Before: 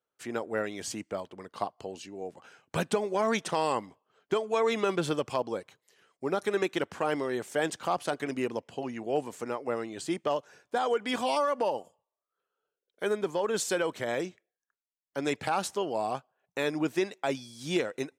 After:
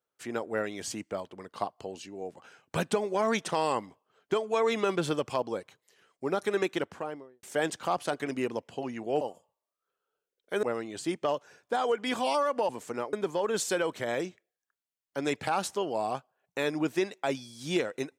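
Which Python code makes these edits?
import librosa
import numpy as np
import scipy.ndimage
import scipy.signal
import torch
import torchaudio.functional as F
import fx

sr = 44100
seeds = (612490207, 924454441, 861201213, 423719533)

y = fx.studio_fade_out(x, sr, start_s=6.67, length_s=0.76)
y = fx.edit(y, sr, fx.swap(start_s=9.21, length_s=0.44, other_s=11.71, other_length_s=1.42), tone=tone)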